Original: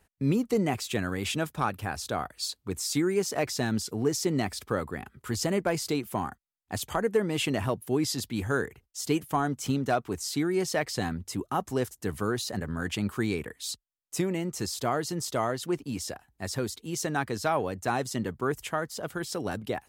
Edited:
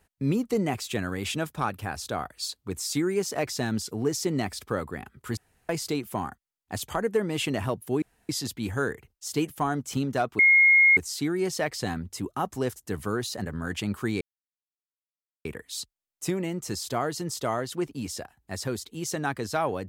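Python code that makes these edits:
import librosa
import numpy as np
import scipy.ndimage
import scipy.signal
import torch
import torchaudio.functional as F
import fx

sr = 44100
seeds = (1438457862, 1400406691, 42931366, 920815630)

y = fx.edit(x, sr, fx.room_tone_fill(start_s=5.37, length_s=0.32),
    fx.insert_room_tone(at_s=8.02, length_s=0.27),
    fx.insert_tone(at_s=10.12, length_s=0.58, hz=2150.0, db=-14.0),
    fx.insert_silence(at_s=13.36, length_s=1.24), tone=tone)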